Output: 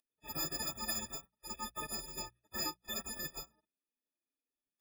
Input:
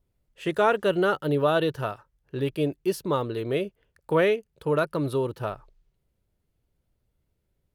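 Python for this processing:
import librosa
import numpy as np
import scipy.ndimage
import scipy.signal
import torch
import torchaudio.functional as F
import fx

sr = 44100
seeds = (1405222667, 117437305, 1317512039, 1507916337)

y = fx.freq_snap(x, sr, grid_st=6)
y = fx.spec_gate(y, sr, threshold_db=-30, keep='weak')
y = fx.stretch_vocoder(y, sr, factor=0.62)
y = fx.hum_notches(y, sr, base_hz=60, count=3)
y = y * 10.0 ** (14.5 / 20.0)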